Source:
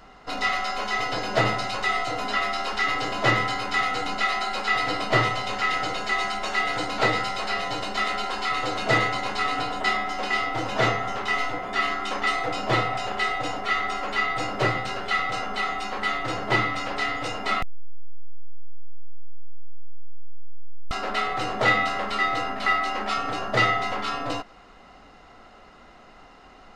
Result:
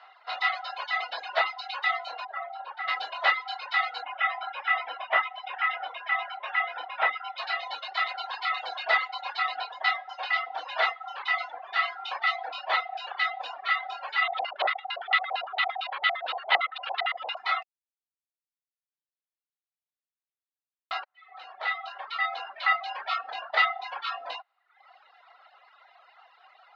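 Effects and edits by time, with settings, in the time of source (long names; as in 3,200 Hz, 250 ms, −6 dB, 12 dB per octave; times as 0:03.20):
0:02.25–0:02.88: resonant band-pass 630 Hz, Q 1.2
0:04.02–0:07.38: Savitzky-Golay smoothing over 25 samples
0:14.22–0:17.37: auto-filter low-pass square 8.8 Hz 690–3,400 Hz
0:21.04–0:22.67: fade in
whole clip: reverb reduction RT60 1.1 s; elliptic band-pass filter 720–4,100 Hz, stop band 70 dB; reverb reduction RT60 0.71 s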